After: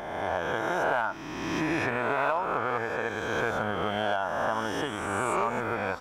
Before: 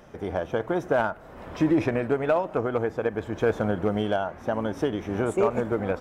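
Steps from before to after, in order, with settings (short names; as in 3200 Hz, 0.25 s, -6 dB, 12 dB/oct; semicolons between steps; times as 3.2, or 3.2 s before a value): spectral swells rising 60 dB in 1.74 s; resonant low shelf 660 Hz -8.5 dB, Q 1.5; compressor, threshold -22 dBFS, peak gain reduction 5 dB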